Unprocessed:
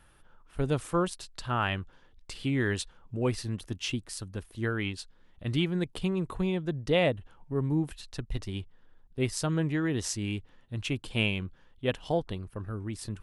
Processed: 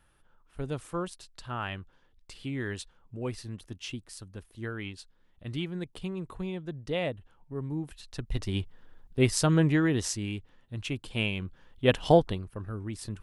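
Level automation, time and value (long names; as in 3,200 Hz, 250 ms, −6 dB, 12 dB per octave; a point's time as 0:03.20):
0:07.82 −6 dB
0:08.57 +5.5 dB
0:09.72 +5.5 dB
0:10.32 −2 dB
0:11.31 −2 dB
0:12.12 +9.5 dB
0:12.47 −0.5 dB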